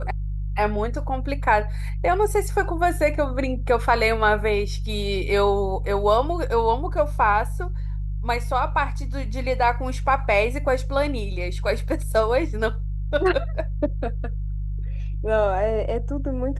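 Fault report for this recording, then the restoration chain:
hum 50 Hz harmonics 3 -27 dBFS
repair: de-hum 50 Hz, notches 3

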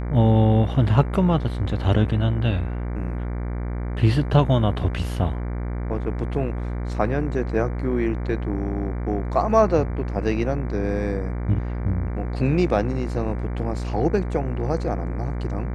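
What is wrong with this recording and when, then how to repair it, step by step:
buzz 60 Hz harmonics 39 -27 dBFS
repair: de-hum 60 Hz, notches 39

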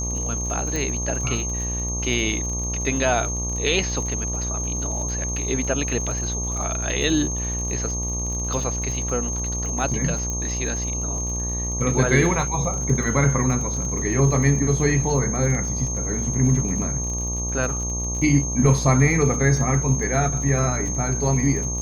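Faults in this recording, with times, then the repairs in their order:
buzz 60 Hz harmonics 20 -28 dBFS
crackle 50/s -30 dBFS
tone 6400 Hz -27 dBFS
0.76 pop
10.3 pop -15 dBFS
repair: de-click; de-hum 60 Hz, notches 20; notch 6400 Hz, Q 30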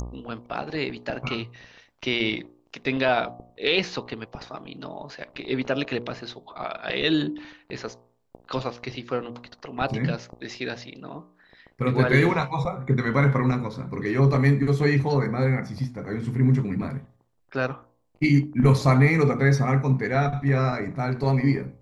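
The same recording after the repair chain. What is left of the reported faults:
none

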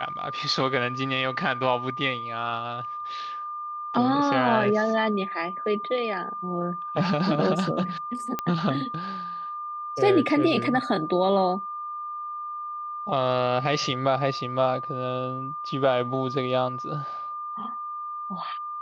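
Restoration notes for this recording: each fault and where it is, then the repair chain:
tone 1200 Hz -31 dBFS
8.39 pop -13 dBFS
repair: de-click; notch 1200 Hz, Q 30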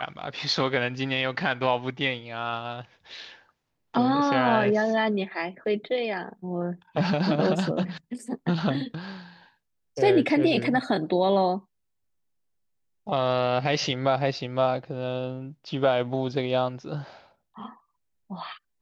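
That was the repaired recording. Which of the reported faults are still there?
none

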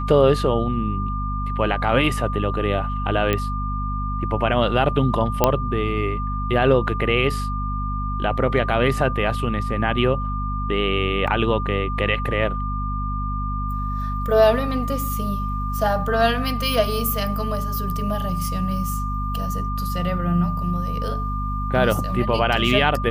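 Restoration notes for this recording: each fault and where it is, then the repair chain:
hum 50 Hz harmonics 5 -26 dBFS
tone 1200 Hz -28 dBFS
3.33 pop -8 dBFS
5.44 pop -1 dBFS
11.27–11.28 gap 5.6 ms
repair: de-click; notch 1200 Hz, Q 30; de-hum 50 Hz, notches 5; interpolate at 11.27, 5.6 ms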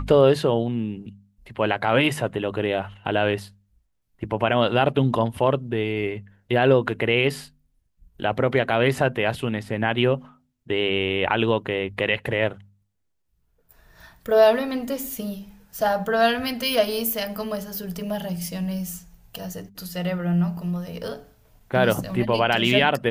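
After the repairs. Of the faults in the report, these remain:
none

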